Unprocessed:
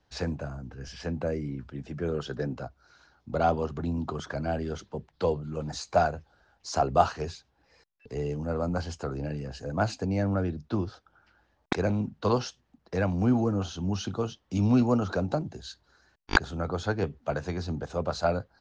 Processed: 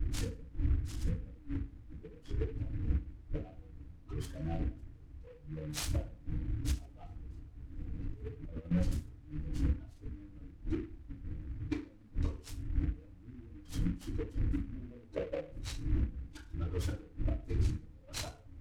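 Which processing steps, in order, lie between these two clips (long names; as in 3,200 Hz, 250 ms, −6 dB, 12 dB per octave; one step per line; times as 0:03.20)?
spectral dynamics exaggerated over time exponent 2
wind on the microphone 99 Hz −32 dBFS
gate with flip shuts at −26 dBFS, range −29 dB
0:14.72–0:15.42: drawn EQ curve 280 Hz 0 dB, 620 Hz +12 dB, 1,100 Hz −16 dB
feedback delay network reverb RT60 0.41 s, low-frequency decay 1×, high-frequency decay 0.7×, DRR −7 dB
flanger 1.2 Hz, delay 2.8 ms, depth 1.2 ms, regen −20%
0:07.30–0:08.71: compressor whose output falls as the input rises −41 dBFS, ratio −0.5
parametric band 990 Hz −14 dB 2.4 octaves
background noise brown −66 dBFS
short delay modulated by noise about 1,600 Hz, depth 0.046 ms
level +4 dB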